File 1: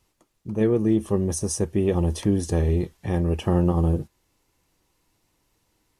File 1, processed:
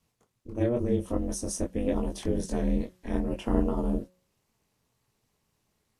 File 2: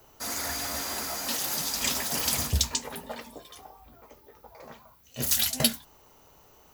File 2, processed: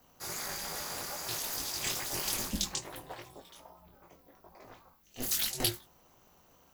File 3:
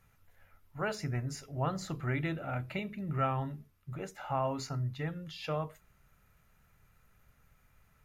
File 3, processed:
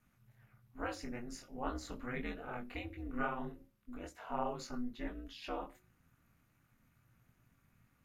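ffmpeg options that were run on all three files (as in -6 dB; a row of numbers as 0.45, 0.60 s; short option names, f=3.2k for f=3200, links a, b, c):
-af "flanger=delay=19.5:depth=3.7:speed=2.4,aeval=exprs='val(0)*sin(2*PI*120*n/s)':c=same,bandreject=f=182.8:t=h:w=4,bandreject=f=365.6:t=h:w=4,bandreject=f=548.4:t=h:w=4"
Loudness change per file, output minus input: -6.5, -6.5, -6.5 LU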